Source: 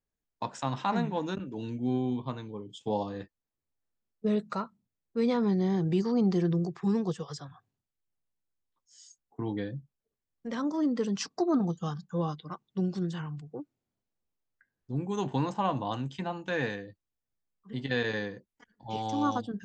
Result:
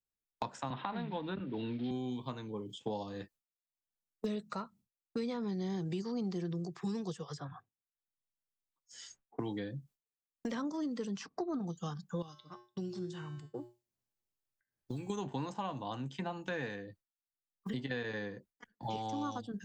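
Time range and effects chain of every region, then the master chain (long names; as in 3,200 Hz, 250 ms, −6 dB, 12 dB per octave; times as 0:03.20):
0:00.70–0:01.91: one scale factor per block 5 bits + elliptic low-pass filter 3,800 Hz, stop band 50 dB + multiband upward and downward compressor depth 70%
0:12.22–0:15.10: upward compression, threshold −52 dBFS + tuned comb filter 120 Hz, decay 0.7 s, harmonics odd, mix 80%
whole clip: downward expander −52 dBFS; high-shelf EQ 4,300 Hz +6.5 dB; multiband upward and downward compressor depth 100%; level −8.5 dB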